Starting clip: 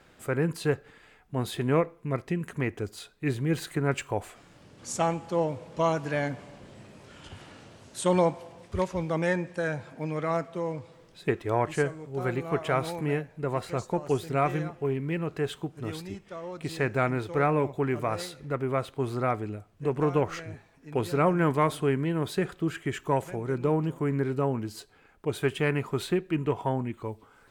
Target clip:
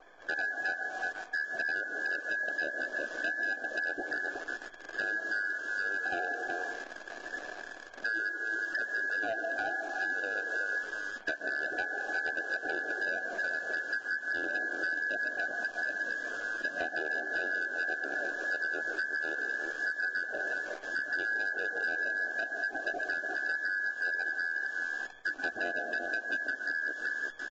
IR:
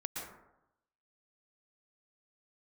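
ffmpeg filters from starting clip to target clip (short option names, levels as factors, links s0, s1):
-filter_complex "[0:a]lowpass=f=2500:t=q:w=0.5098,lowpass=f=2500:t=q:w=0.6013,lowpass=f=2500:t=q:w=0.9,lowpass=f=2500:t=q:w=2.563,afreqshift=-2900,acrusher=bits=9:mode=log:mix=0:aa=0.000001,asuperstop=centerf=1800:order=12:qfactor=1.4,aecho=1:1:365:0.316,asplit=2[s0][s1];[1:a]atrim=start_sample=2205[s2];[s1][s2]afir=irnorm=-1:irlink=0,volume=0.75[s3];[s0][s3]amix=inputs=2:normalize=0,acrusher=bits=8:dc=4:mix=0:aa=0.000001,equalizer=f=125:t=o:w=1:g=-7,equalizer=f=250:t=o:w=1:g=-9,equalizer=f=500:t=o:w=1:g=12,equalizer=f=1000:t=o:w=1:g=8,equalizer=f=2000:t=o:w=1:g=9,acompressor=threshold=0.0501:ratio=10,asetrate=26990,aresample=44100,atempo=1.63392,asoftclip=type=hard:threshold=0.0631,volume=0.708" -ar 16000 -c:a libvorbis -b:a 32k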